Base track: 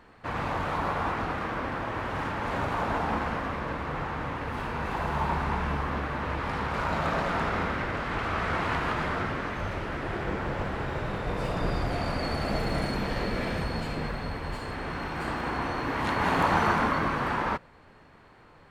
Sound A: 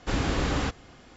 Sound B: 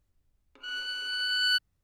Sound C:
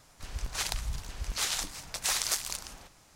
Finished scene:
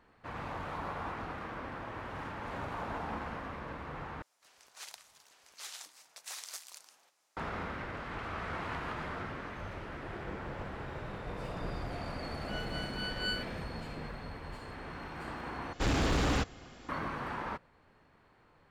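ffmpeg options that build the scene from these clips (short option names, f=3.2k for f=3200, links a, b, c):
-filter_complex "[0:a]volume=-10dB[a];[3:a]highpass=490[b];[2:a]tremolo=f=4.2:d=0.77[c];[1:a]volume=24.5dB,asoftclip=hard,volume=-24.5dB[d];[a]asplit=3[e][f][g];[e]atrim=end=4.224[h];[b]atrim=end=3.15,asetpts=PTS-STARTPTS,volume=-14.5dB[i];[f]atrim=start=7.366:end=15.734[j];[d]atrim=end=1.16,asetpts=PTS-STARTPTS,volume=-0.5dB[k];[g]atrim=start=16.886[l];[c]atrim=end=1.83,asetpts=PTS-STARTPTS,volume=-7dB,afade=t=in:d=0.004:c=hsin,afade=t=out:st=1.826:d=0.004:c=hsin,adelay=11850[m];[h][i]acrossfade=d=0.004:c1=hsin:c2=hsin[n];[n][j]acrossfade=d=0.004:c1=hsin:c2=hsin[o];[o][k]acrossfade=d=0.004:c1=hsin:c2=hsin[p];[p][l]acrossfade=d=0.004:c1=hsin:c2=hsin[q];[q][m]amix=inputs=2:normalize=0"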